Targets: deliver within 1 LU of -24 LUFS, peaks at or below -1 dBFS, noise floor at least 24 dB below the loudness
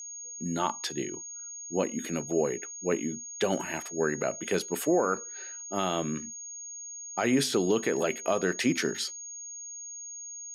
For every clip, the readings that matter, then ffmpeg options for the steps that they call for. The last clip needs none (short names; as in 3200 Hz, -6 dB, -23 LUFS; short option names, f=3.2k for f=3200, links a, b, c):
steady tone 6600 Hz; tone level -39 dBFS; loudness -30.5 LUFS; peak -15.0 dBFS; loudness target -24.0 LUFS
-> -af "bandreject=f=6.6k:w=30"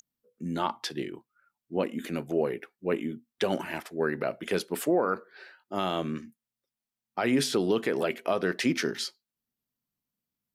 steady tone none; loudness -30.5 LUFS; peak -15.5 dBFS; loudness target -24.0 LUFS
-> -af "volume=6.5dB"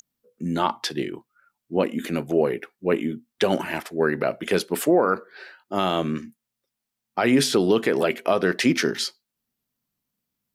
loudness -24.0 LUFS; peak -9.0 dBFS; noise floor -84 dBFS